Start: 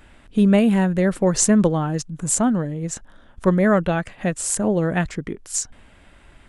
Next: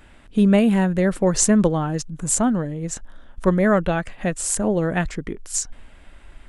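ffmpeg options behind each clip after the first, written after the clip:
-af "asubboost=boost=3:cutoff=52"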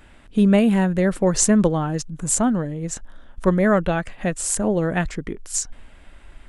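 -af anull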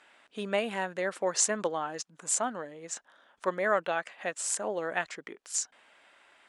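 -af "highpass=620,lowpass=7900,volume=0.596"

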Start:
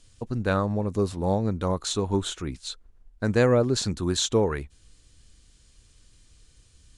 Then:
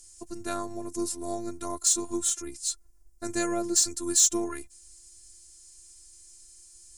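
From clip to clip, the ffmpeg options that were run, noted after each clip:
-af "afftfilt=real='hypot(re,im)*cos(PI*b)':imag='0':win_size=512:overlap=0.75,aexciter=amount=4.6:drive=9.4:freq=5100,volume=0.708"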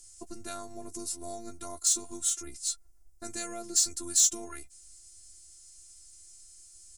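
-filter_complex "[0:a]acrossover=split=2300[s0][s1];[s0]alimiter=level_in=1.5:limit=0.0631:level=0:latency=1:release=422,volume=0.668[s2];[s2][s1]amix=inputs=2:normalize=0,asplit=2[s3][s4];[s4]adelay=13,volume=0.398[s5];[s3][s5]amix=inputs=2:normalize=0,volume=0.794"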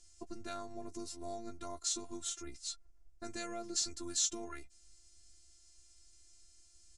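-af "lowpass=4600,volume=0.75"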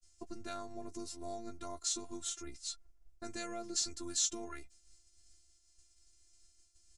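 -af "agate=range=0.0224:threshold=0.00178:ratio=3:detection=peak"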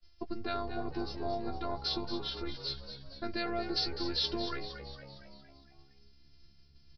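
-filter_complex "[0:a]asplit=2[s0][s1];[s1]asplit=6[s2][s3][s4][s5][s6][s7];[s2]adelay=230,afreqshift=68,volume=0.316[s8];[s3]adelay=460,afreqshift=136,volume=0.178[s9];[s4]adelay=690,afreqshift=204,volume=0.0989[s10];[s5]adelay=920,afreqshift=272,volume=0.0556[s11];[s6]adelay=1150,afreqshift=340,volume=0.0313[s12];[s7]adelay=1380,afreqshift=408,volume=0.0174[s13];[s8][s9][s10][s11][s12][s13]amix=inputs=6:normalize=0[s14];[s0][s14]amix=inputs=2:normalize=0,aresample=11025,aresample=44100,volume=2.37"

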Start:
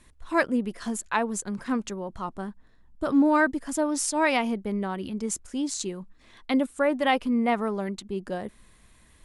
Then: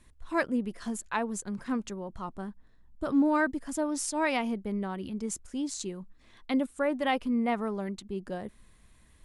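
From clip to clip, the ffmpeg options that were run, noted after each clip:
-af "lowshelf=f=210:g=4.5,volume=0.531"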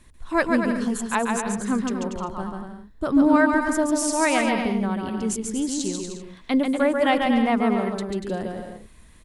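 -af "aecho=1:1:140|238|306.6|354.6|388.2:0.631|0.398|0.251|0.158|0.1,volume=2.11"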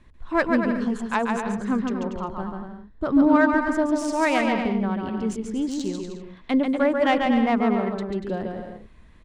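-af "adynamicsmooth=sensitivity=1:basefreq=3600"

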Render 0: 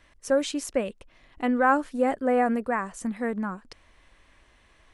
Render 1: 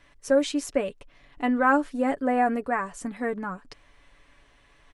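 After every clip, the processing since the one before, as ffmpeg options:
-af "highshelf=f=8700:g=-4.5,aecho=1:1:7:0.5"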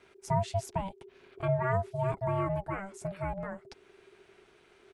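-filter_complex "[0:a]acrossover=split=410[s0][s1];[s1]acompressor=threshold=0.00355:ratio=1.5[s2];[s0][s2]amix=inputs=2:normalize=0,aeval=exprs='val(0)*sin(2*PI*390*n/s)':c=same"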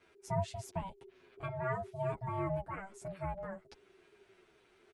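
-filter_complex "[0:a]asplit=2[s0][s1];[s1]adelay=8.6,afreqshift=-2.5[s2];[s0][s2]amix=inputs=2:normalize=1,volume=0.75"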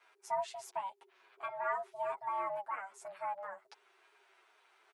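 -af "highpass=f=890:t=q:w=1.8"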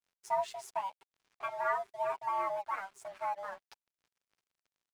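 -af "aeval=exprs='sgn(val(0))*max(abs(val(0))-0.00106,0)':c=same,volume=1.5"

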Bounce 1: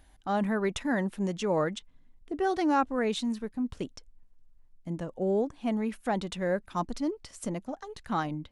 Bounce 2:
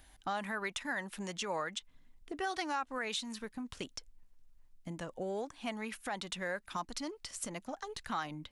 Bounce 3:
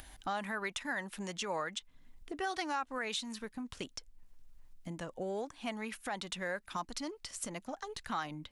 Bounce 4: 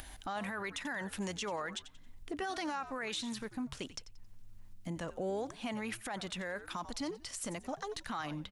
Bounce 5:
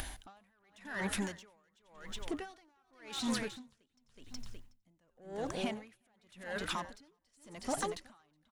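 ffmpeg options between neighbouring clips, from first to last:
-filter_complex "[0:a]tiltshelf=f=1100:g=-4,acrossover=split=740|1300[s0][s1][s2];[s0]acompressor=threshold=0.00891:ratio=6[s3];[s3][s1][s2]amix=inputs=3:normalize=0,alimiter=level_in=1.41:limit=0.0631:level=0:latency=1:release=171,volume=0.708,volume=1.12"
-af "acompressor=mode=upward:threshold=0.00562:ratio=2.5"
-filter_complex "[0:a]asplit=4[s0][s1][s2][s3];[s1]adelay=90,afreqshift=-110,volume=0.119[s4];[s2]adelay=180,afreqshift=-220,volume=0.0367[s5];[s3]adelay=270,afreqshift=-330,volume=0.0115[s6];[s0][s4][s5][s6]amix=inputs=4:normalize=0,alimiter=level_in=2.82:limit=0.0631:level=0:latency=1:release=25,volume=0.355,volume=1.5"
-af "asoftclip=type=tanh:threshold=0.0211,aecho=1:1:369|738|1107:0.422|0.114|0.0307,aeval=exprs='val(0)*pow(10,-40*(0.5-0.5*cos(2*PI*0.9*n/s))/20)':c=same,volume=2.51"

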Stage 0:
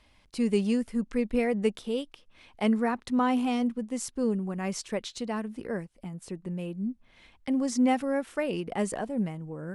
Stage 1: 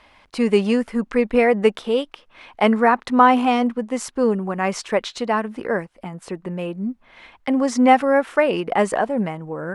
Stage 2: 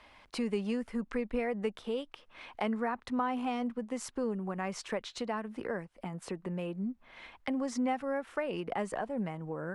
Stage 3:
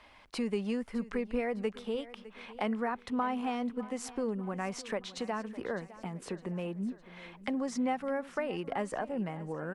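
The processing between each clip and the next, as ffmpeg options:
-af "equalizer=f=1100:w=0.32:g=15,volume=1.12"
-filter_complex "[0:a]acrossover=split=130[s0][s1];[s1]acompressor=threshold=0.0282:ratio=2.5[s2];[s0][s2]amix=inputs=2:normalize=0,volume=0.531"
-af "aecho=1:1:608|1216|1824|2432:0.141|0.0664|0.0312|0.0147"

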